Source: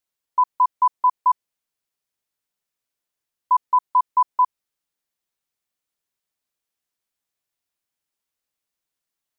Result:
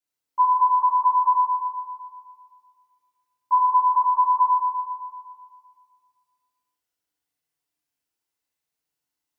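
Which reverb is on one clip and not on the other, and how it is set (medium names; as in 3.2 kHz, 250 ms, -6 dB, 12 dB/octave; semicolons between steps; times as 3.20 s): FDN reverb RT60 2 s, low-frequency decay 1×, high-frequency decay 0.8×, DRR -9 dB; trim -9.5 dB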